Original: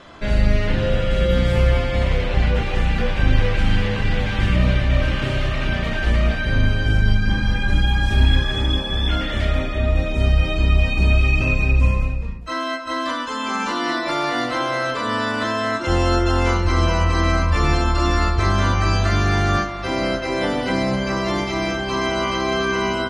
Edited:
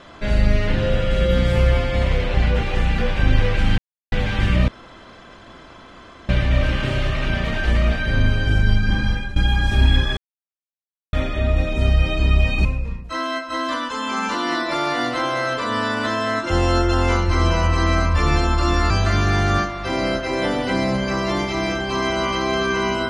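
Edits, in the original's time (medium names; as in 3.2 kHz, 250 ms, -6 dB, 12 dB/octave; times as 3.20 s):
3.78–4.12 s: mute
4.68 s: insert room tone 1.61 s
7.46–7.75 s: fade out, to -17 dB
8.56–9.52 s: mute
11.04–12.02 s: delete
18.27–18.89 s: delete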